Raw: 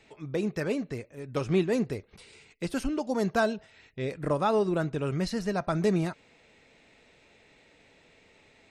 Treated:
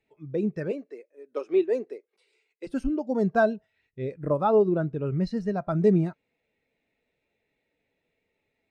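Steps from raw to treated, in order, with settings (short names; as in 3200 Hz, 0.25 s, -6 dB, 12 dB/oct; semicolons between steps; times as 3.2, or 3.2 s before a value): 0.71–2.67 HPF 320 Hz 24 dB/oct; 4.46–5.33 high shelf 7000 Hz -5 dB; spectral expander 1.5:1; gain +4 dB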